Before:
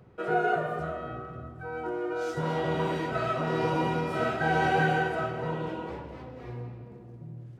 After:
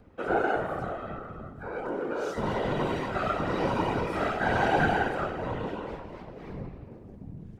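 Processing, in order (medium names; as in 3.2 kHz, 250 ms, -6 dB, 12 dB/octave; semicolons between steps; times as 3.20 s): whisper effect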